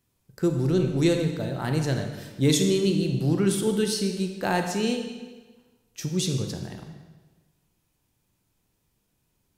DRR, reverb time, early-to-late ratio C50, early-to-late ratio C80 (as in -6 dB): 4.5 dB, 1.3 s, 6.0 dB, 7.5 dB